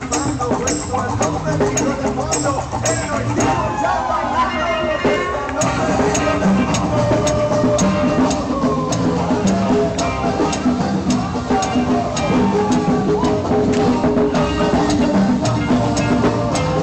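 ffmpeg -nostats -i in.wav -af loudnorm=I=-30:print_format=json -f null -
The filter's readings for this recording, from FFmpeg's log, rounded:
"input_i" : "-17.2",
"input_tp" : "-9.3",
"input_lra" : "2.0",
"input_thresh" : "-27.2",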